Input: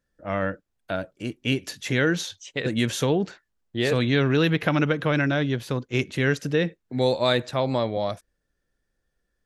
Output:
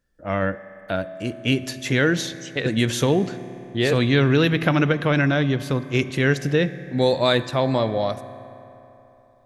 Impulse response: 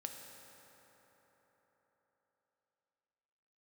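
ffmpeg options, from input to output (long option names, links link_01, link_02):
-filter_complex "[0:a]asplit=2[link_01][link_02];[1:a]atrim=start_sample=2205,asetrate=57330,aresample=44100,lowshelf=frequency=110:gain=10.5[link_03];[link_02][link_03]afir=irnorm=-1:irlink=0,volume=-2dB[link_04];[link_01][link_04]amix=inputs=2:normalize=0"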